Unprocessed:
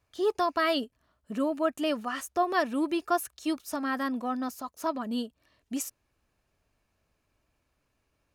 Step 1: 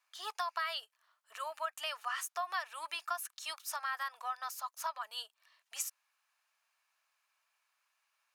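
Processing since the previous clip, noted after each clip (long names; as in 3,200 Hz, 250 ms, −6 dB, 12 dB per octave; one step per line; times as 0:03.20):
inverse Chebyshev high-pass filter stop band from 270 Hz, stop band 60 dB
downward compressor 6 to 1, threshold −34 dBFS, peak gain reduction 10 dB
level +1 dB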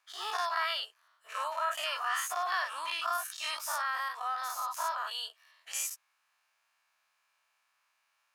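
every bin's largest magnitude spread in time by 120 ms
high-shelf EQ 6,000 Hz −4.5 dB
tape wow and flutter 17 cents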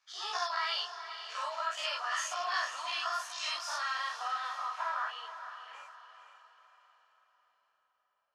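low-pass filter sweep 5,700 Hz → 560 Hz, 0:03.50–0:06.96
multi-voice chorus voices 2, 0.98 Hz, delay 15 ms, depth 3 ms
feedback delay with all-pass diffusion 482 ms, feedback 44%, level −10 dB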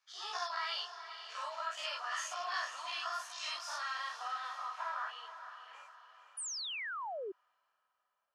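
sound drawn into the spectrogram fall, 0:06.37–0:07.32, 360–10,000 Hz −36 dBFS
level −4.5 dB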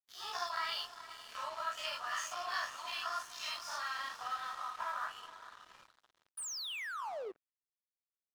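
on a send at −13 dB: convolution reverb RT60 0.70 s, pre-delay 3 ms
on the sum: dead-zone distortion −53 dBFS
level +1 dB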